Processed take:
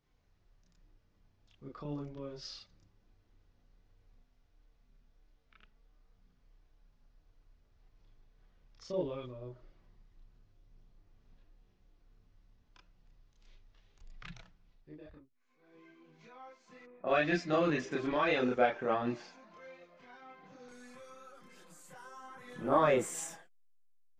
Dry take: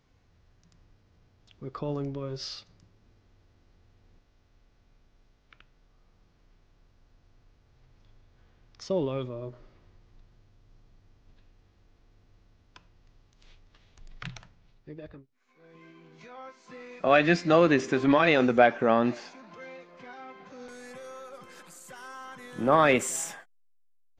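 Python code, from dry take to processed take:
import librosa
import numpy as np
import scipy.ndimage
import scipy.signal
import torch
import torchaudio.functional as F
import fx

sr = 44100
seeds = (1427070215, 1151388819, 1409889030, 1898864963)

y = fx.chorus_voices(x, sr, voices=6, hz=0.37, base_ms=30, depth_ms=3.3, mix_pct=55)
y = fx.env_lowpass(y, sr, base_hz=810.0, full_db=-22.5, at=(16.85, 17.9), fade=0.02)
y = y * librosa.db_to_amplitude(-5.5)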